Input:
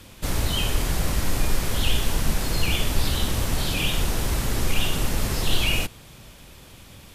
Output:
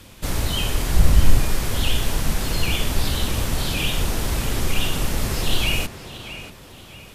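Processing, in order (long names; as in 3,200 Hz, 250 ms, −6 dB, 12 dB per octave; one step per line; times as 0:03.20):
0:00.94–0:01.40: low-shelf EQ 160 Hz +11 dB
tape delay 636 ms, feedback 42%, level −10 dB, low-pass 4,100 Hz
level +1 dB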